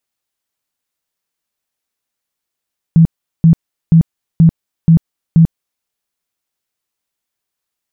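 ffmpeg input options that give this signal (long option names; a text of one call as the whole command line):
ffmpeg -f lavfi -i "aevalsrc='0.708*sin(2*PI*164*mod(t,0.48))*lt(mod(t,0.48),15/164)':duration=2.88:sample_rate=44100" out.wav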